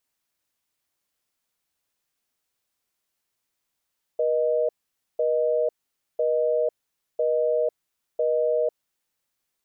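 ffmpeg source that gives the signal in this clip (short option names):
-f lavfi -i "aevalsrc='0.075*(sin(2*PI*480*t)+sin(2*PI*620*t))*clip(min(mod(t,1),0.5-mod(t,1))/0.005,0,1)':d=4.63:s=44100"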